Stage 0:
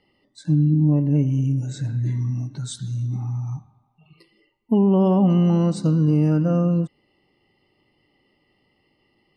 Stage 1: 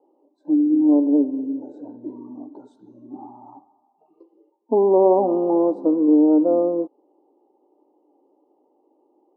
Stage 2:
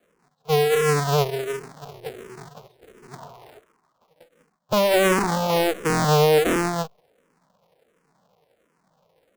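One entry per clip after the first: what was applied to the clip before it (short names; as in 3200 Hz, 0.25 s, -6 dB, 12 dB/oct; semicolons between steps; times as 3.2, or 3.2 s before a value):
elliptic band-pass 290–920 Hz, stop band 40 dB; gain +8 dB
cycle switcher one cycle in 2, inverted; stuck buffer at 5.88, samples 1024, times 6; endless phaser -1.4 Hz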